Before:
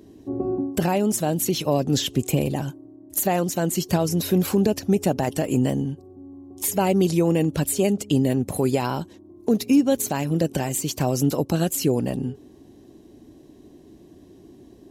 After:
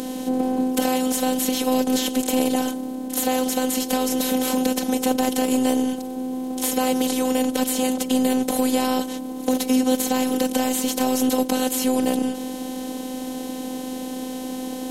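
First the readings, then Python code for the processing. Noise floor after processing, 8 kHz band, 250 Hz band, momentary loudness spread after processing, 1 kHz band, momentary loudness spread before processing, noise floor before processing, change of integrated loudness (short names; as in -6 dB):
-31 dBFS, +2.5 dB, +2.0 dB, 10 LU, +3.5 dB, 10 LU, -50 dBFS, +0.5 dB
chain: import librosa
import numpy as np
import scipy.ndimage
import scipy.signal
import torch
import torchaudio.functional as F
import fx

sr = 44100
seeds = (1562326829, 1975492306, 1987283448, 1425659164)

y = fx.bin_compress(x, sr, power=0.4)
y = fx.highpass(y, sr, hz=170.0, slope=6)
y = fx.robotise(y, sr, hz=256.0)
y = y * librosa.db_to_amplitude(-2.5)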